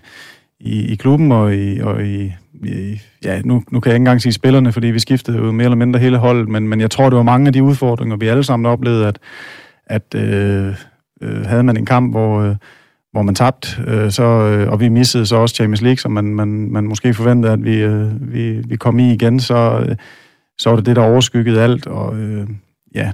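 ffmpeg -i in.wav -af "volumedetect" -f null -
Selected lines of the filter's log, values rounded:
mean_volume: -13.7 dB
max_volume: -3.2 dB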